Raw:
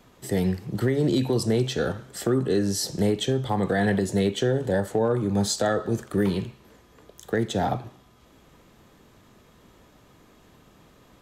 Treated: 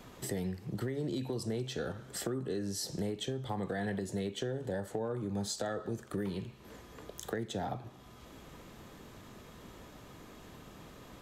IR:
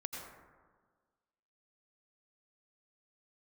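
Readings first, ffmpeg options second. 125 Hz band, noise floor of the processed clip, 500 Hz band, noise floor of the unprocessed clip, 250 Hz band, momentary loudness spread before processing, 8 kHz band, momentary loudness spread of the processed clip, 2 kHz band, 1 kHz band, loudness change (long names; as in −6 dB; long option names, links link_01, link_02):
−12.5 dB, −54 dBFS, −12.5 dB, −56 dBFS, −12.5 dB, 5 LU, −9.0 dB, 16 LU, −12.0 dB, −12.0 dB, −12.5 dB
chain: -af "acompressor=threshold=-42dB:ratio=3,volume=3dB"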